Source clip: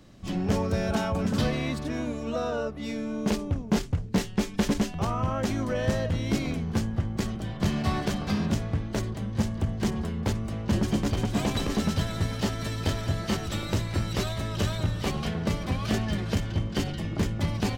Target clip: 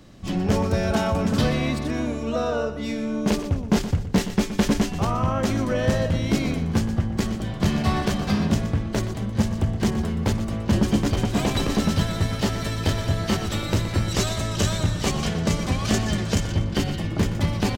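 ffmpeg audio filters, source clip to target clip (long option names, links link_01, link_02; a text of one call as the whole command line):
ffmpeg -i in.wav -filter_complex "[0:a]asettb=1/sr,asplit=3[link_01][link_02][link_03];[link_01]atrim=end=14.084[link_04];[link_02]atrim=start=14.08:end=16.55,asetpts=PTS-STARTPTS,afade=type=in:duration=0.004:curve=qsin,afade=type=out:start_time=2.466:duration=0.004:curve=qsin,equalizer=frequency=7000:width_type=o:width=0.94:gain=8[link_05];[link_03]atrim=start=16.546[link_06];[link_04][link_05]acrossfade=duration=0.004:curve1=hsin:curve2=qsin[link_07];[link_07][link_06]acrossfade=duration=0.004:curve1=qsin:curve2=hsin,aecho=1:1:121|242|363:0.251|0.0779|0.0241,volume=4.5dB" out.wav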